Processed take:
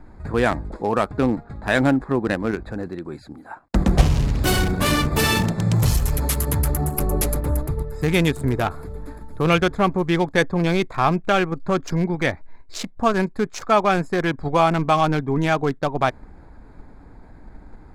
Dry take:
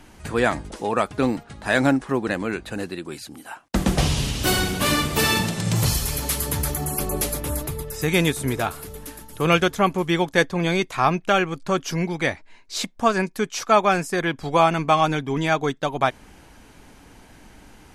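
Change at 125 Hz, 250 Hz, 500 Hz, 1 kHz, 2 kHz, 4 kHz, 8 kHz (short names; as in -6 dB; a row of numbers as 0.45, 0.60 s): +4.0, +2.0, +1.0, 0.0, -0.5, -2.5, -3.0 dB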